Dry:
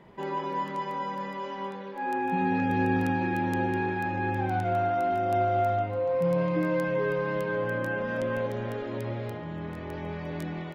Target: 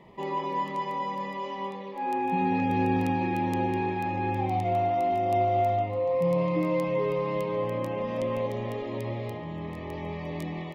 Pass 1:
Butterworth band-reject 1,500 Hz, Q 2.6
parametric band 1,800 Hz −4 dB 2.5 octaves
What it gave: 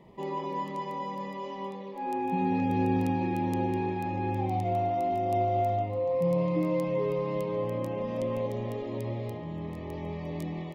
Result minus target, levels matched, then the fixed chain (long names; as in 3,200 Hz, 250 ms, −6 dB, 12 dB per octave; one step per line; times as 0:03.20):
2,000 Hz band −4.0 dB
Butterworth band-reject 1,500 Hz, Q 2.6
parametric band 1,800 Hz +2.5 dB 2.5 octaves